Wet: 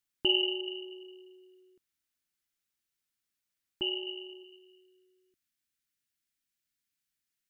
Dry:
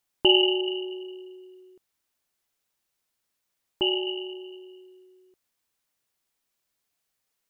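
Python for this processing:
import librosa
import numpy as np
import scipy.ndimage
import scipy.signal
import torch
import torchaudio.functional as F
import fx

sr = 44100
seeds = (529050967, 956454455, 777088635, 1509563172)

y = fx.band_shelf(x, sr, hz=670.0, db=fx.steps((0.0, -8.5), (4.43, -16.0)), octaves=1.7)
y = y * 10.0 ** (-6.5 / 20.0)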